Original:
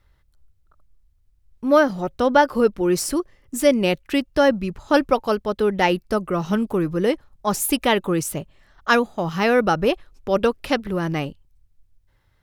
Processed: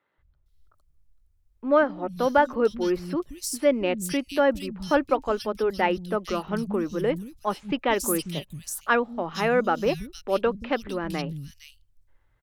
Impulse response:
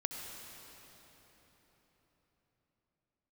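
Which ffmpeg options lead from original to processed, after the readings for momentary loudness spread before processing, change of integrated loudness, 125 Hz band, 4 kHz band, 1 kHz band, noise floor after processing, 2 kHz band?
9 LU, −5.0 dB, −6.5 dB, −6.5 dB, −4.0 dB, −66 dBFS, −4.5 dB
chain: -filter_complex "[0:a]acrossover=split=200|3300[link_01][link_02][link_03];[link_01]adelay=180[link_04];[link_03]adelay=460[link_05];[link_04][link_02][link_05]amix=inputs=3:normalize=0,volume=-4dB"

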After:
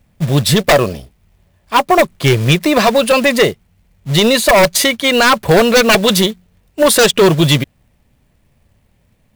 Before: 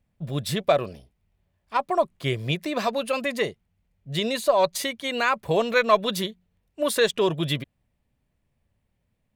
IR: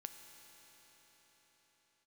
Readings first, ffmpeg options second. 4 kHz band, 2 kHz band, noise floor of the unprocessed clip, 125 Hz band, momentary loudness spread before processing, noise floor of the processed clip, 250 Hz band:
+15.0 dB, +13.5 dB, −74 dBFS, +16.0 dB, 9 LU, −57 dBFS, +15.5 dB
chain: -af "acrusher=bits=4:mode=log:mix=0:aa=0.000001,aeval=exprs='0.596*sin(PI/2*4.47*val(0)/0.596)':channel_layout=same"

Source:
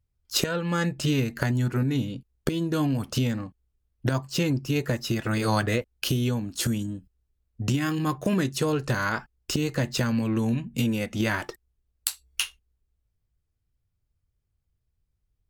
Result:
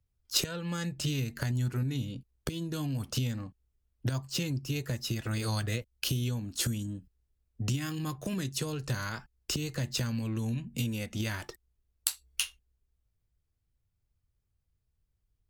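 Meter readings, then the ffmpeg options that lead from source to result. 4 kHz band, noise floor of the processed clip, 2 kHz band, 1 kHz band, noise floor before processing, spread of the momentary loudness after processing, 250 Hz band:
−3.5 dB, −79 dBFS, −9.0 dB, −11.5 dB, −78 dBFS, 7 LU, −9.5 dB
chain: -filter_complex "[0:a]acrossover=split=140|3000[link_01][link_02][link_03];[link_02]acompressor=threshold=-37dB:ratio=3[link_04];[link_01][link_04][link_03]amix=inputs=3:normalize=0,volume=-2dB"

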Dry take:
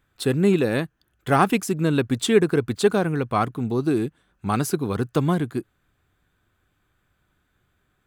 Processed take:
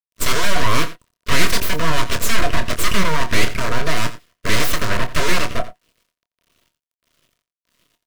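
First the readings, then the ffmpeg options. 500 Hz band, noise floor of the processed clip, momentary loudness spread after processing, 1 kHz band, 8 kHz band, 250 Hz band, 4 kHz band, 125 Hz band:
−4.0 dB, below −85 dBFS, 7 LU, +3.5 dB, +10.0 dB, −5.5 dB, +11.5 dB, −0.5 dB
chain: -filter_complex "[0:a]highpass=62,agate=range=-12dB:threshold=-35dB:ratio=16:detection=peak,equalizer=frequency=1300:width_type=o:width=1.5:gain=2.5,acrossover=split=270|1300[link_01][link_02][link_03];[link_01]aeval=exprs='(mod(21.1*val(0)+1,2)-1)/21.1':channel_layout=same[link_04];[link_04][link_02][link_03]amix=inputs=3:normalize=0,acrossover=split=650[link_05][link_06];[link_05]aeval=exprs='val(0)*(1-0.7/2+0.7/2*cos(2*PI*1.6*n/s))':channel_layout=same[link_07];[link_06]aeval=exprs='val(0)*(1-0.7/2-0.7/2*cos(2*PI*1.6*n/s))':channel_layout=same[link_08];[link_07][link_08]amix=inputs=2:normalize=0,asplit=2[link_09][link_10];[link_10]highpass=frequency=720:poles=1,volume=26dB,asoftclip=type=tanh:threshold=-6dB[link_11];[link_09][link_11]amix=inputs=2:normalize=0,lowpass=frequency=4800:poles=1,volume=-6dB,aeval=exprs='abs(val(0))':channel_layout=same,acrusher=bits=9:mix=0:aa=0.000001,asuperstop=centerf=820:order=20:qfactor=4.7,asplit=2[link_12][link_13];[link_13]adelay=26,volume=-9dB[link_14];[link_12][link_14]amix=inputs=2:normalize=0,asplit=2[link_15][link_16];[link_16]aecho=0:1:87:0.168[link_17];[link_15][link_17]amix=inputs=2:normalize=0,adynamicequalizer=threshold=0.0178:dfrequency=2700:dqfactor=0.7:tfrequency=2700:tqfactor=0.7:attack=5:release=100:ratio=0.375:range=1.5:mode=cutabove:tftype=highshelf,volume=3dB"

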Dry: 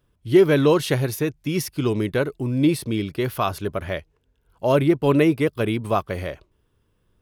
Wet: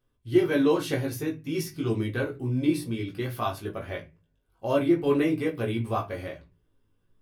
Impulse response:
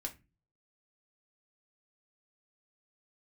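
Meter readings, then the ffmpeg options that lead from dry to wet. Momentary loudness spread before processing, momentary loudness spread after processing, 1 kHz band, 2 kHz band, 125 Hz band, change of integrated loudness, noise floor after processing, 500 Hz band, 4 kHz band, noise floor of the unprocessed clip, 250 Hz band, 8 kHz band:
12 LU, 13 LU, −6.5 dB, −6.0 dB, −7.0 dB, −6.0 dB, −72 dBFS, −6.5 dB, −7.0 dB, −68 dBFS, −5.0 dB, −7.5 dB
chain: -filter_complex "[0:a]flanger=delay=16.5:depth=2.1:speed=0.37[link_01];[1:a]atrim=start_sample=2205[link_02];[link_01][link_02]afir=irnorm=-1:irlink=0,volume=-2.5dB"

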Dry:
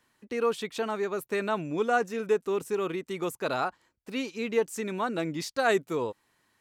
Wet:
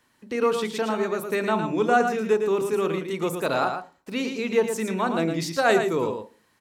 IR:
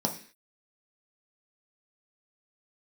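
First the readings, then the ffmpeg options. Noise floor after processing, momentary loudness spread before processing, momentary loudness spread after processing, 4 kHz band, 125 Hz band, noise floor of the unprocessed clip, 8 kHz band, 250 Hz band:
−65 dBFS, 7 LU, 8 LU, +5.0 dB, +7.0 dB, −74 dBFS, +5.0 dB, +6.5 dB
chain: -filter_complex "[0:a]aecho=1:1:112:0.447,asplit=2[link_01][link_02];[1:a]atrim=start_sample=2205,adelay=33[link_03];[link_02][link_03]afir=irnorm=-1:irlink=0,volume=-19.5dB[link_04];[link_01][link_04]amix=inputs=2:normalize=0,volume=4dB"

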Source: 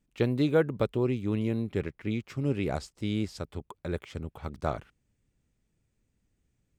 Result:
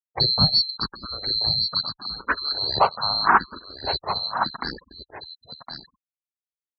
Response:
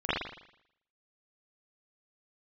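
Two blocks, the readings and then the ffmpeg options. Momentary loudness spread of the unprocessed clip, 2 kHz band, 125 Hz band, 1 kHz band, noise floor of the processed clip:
14 LU, +13.0 dB, −1.5 dB, +18.0 dB, below −85 dBFS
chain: -filter_complex "[0:a]afftfilt=real='real(if(lt(b,736),b+184*(1-2*mod(floor(b/184),2)),b),0)':imag='imag(if(lt(b,736),b+184*(1-2*mod(floor(b/184),2)),b),0)':win_size=2048:overlap=0.75,lowpass=frequency=1500:width=0.5412,lowpass=frequency=1500:width=1.3066,afftfilt=real='re*gte(hypot(re,im),0.000447)':imag='im*gte(hypot(re,im),0.000447)':win_size=1024:overlap=0.75,highpass=44,tiltshelf=frequency=680:gain=-6,acontrast=37,aecho=1:1:1062:0.299,alimiter=level_in=33dB:limit=-1dB:release=50:level=0:latency=1,asplit=2[link_01][link_02];[link_02]afreqshift=0.79[link_03];[link_01][link_03]amix=inputs=2:normalize=1,volume=-2dB"

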